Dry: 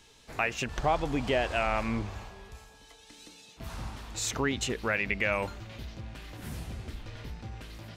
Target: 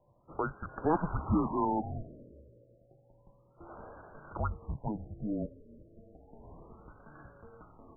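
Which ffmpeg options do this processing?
-filter_complex "[0:a]highpass=f=290:t=q:w=0.5412,highpass=f=290:t=q:w=1.307,lowpass=f=3.2k:t=q:w=0.5176,lowpass=f=3.2k:t=q:w=0.7071,lowpass=f=3.2k:t=q:w=1.932,afreqshift=-320,asplit=3[a][b][c];[a]afade=t=out:st=0.89:d=0.02[d];[b]equalizer=f=125:t=o:w=1:g=3,equalizer=f=250:t=o:w=1:g=5,equalizer=f=500:t=o:w=1:g=-9,equalizer=f=1k:t=o:w=1:g=11,equalizer=f=2k:t=o:w=1:g=11,afade=t=in:st=0.89:d=0.02,afade=t=out:st=2.31:d=0.02[e];[c]afade=t=in:st=2.31:d=0.02[f];[d][e][f]amix=inputs=3:normalize=0,afftfilt=real='re*lt(b*sr/1024,620*pow(1700/620,0.5+0.5*sin(2*PI*0.31*pts/sr)))':imag='im*lt(b*sr/1024,620*pow(1700/620,0.5+0.5*sin(2*PI*0.31*pts/sr)))':win_size=1024:overlap=0.75,volume=-1.5dB"

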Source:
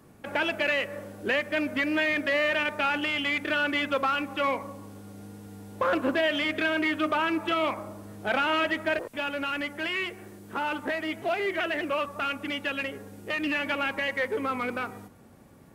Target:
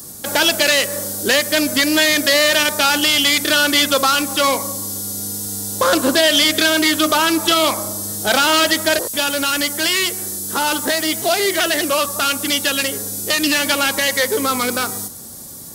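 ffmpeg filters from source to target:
-filter_complex "[0:a]asplit=2[a][b];[b]asoftclip=type=tanh:threshold=-23dB,volume=-10.5dB[c];[a][c]amix=inputs=2:normalize=0,aexciter=amount=10.7:drive=6.2:freq=3.8k,volume=8dB"

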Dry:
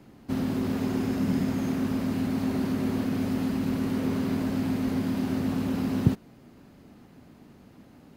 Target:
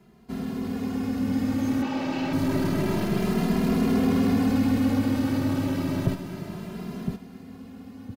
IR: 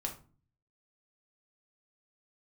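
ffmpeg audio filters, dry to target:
-filter_complex "[0:a]asettb=1/sr,asplit=3[a][b][c];[a]atrim=end=1.824[d];[b]atrim=start=1.82:end=2.33,asetpts=PTS-STARTPTS,afade=t=in:d=0.004:c=qsin,afade=t=out:st=0.506:d=0.004:c=qsin,highpass=220,equalizer=f=250:t=q:w=4:g=-7,equalizer=f=810:t=q:w=4:g=8,equalizer=f=2.7k:t=q:w=4:g=7,lowpass=f=6.3k:w=0.5412,lowpass=f=6.3k:w=1.3066[e];[c]atrim=start=2.326[f];[d][e]acrossfade=d=0.004:c1=hsin:c2=qsin[g];[g][f]acrossfade=d=0.004:c1=qsin:c2=hsin,dynaudnorm=f=230:g=17:m=11.5dB,aecho=1:1:1013|2026|3039:0.376|0.105|0.0295,aeval=exprs='(tanh(4.47*val(0)+0.2)-tanh(0.2))/4.47':c=same,asplit=2[h][i];[i]adelay=2.5,afreqshift=0.29[j];[h][j]amix=inputs=2:normalize=1"

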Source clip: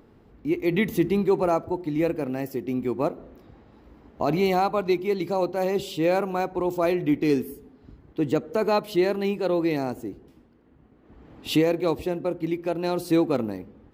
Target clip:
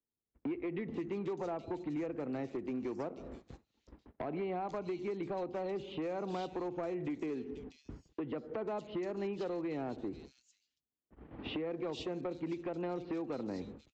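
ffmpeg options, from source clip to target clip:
-filter_complex "[0:a]agate=range=-47dB:threshold=-47dB:ratio=16:detection=peak,acrossover=split=120|1000|3400[a][b][c][d];[a]acompressor=threshold=-51dB:ratio=4[e];[b]acompressor=threshold=-22dB:ratio=4[f];[c]acompressor=threshold=-40dB:ratio=4[g];[d]acompressor=threshold=-56dB:ratio=4[h];[e][f][g][h]amix=inputs=4:normalize=0,acrossover=split=240[i][j];[i]alimiter=level_in=9dB:limit=-24dB:level=0:latency=1,volume=-9dB[k];[k][j]amix=inputs=2:normalize=0,acompressor=threshold=-37dB:ratio=8,aresample=16000,volume=34.5dB,asoftclip=hard,volume=-34.5dB,aresample=44100,acrossover=split=3400[l][m];[m]adelay=490[n];[l][n]amix=inputs=2:normalize=0,volume=2.5dB"

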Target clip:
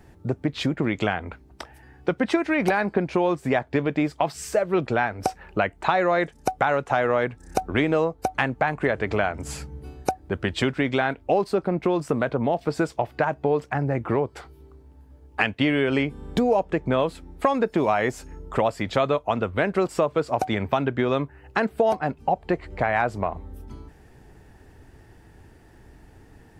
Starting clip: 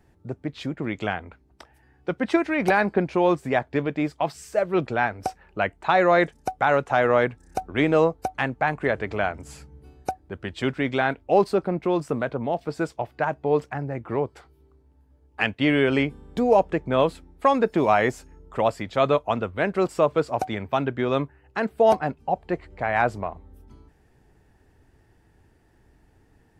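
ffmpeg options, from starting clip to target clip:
-af "acompressor=threshold=-29dB:ratio=4,volume=9dB"

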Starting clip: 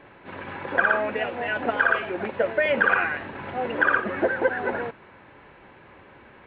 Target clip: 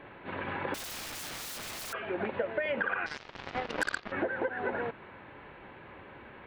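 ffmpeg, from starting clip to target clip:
-filter_complex "[0:a]acompressor=threshold=-29dB:ratio=6,asettb=1/sr,asplit=3[a][b][c];[a]atrim=end=0.744[d];[b]atrim=start=0.74:end=1.93,asetpts=PTS-STARTPTS,afade=t=in:d=0.004:c=qsin,afade=t=out:st=1.186:d=0.004:c=qsin,aeval=exprs='(mod(63.1*val(0)+1,2)-1)/63.1':c=same[e];[c]atrim=start=1.926[f];[d][e]acrossfade=d=0.004:c1=hsin:c2=qsin[g];[g][f]acrossfade=d=0.004:c1=qsin:c2=hsin,asettb=1/sr,asplit=3[h][i][j];[h]atrim=end=3.064[k];[i]atrim=start=3.06:end=4.12,asetpts=PTS-STARTPTS,afade=t=in:d=0.004:c=qsin,afade=t=out:st=1.056:d=0.004:c=qsin,aeval=exprs='0.119*(cos(1*acos(clip(val(0)/0.119,-1,1)))-cos(1*PI/2))+0.0211*(cos(7*acos(clip(val(0)/0.119,-1,1)))-cos(7*PI/2))':c=same[l];[j]atrim=start=4.116[m];[k][l]acrossfade=d=0.004:c1=hsin:c2=qsin[n];[n][m]acrossfade=d=0.004:c1=qsin:c2=hsin"

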